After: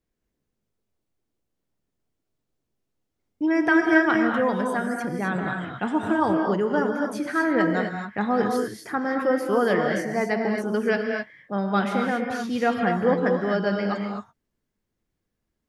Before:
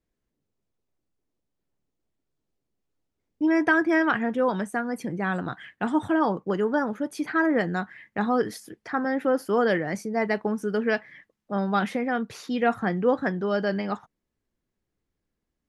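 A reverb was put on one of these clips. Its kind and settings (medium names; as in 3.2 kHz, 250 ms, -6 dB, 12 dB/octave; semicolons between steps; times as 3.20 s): gated-style reverb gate 280 ms rising, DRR 2 dB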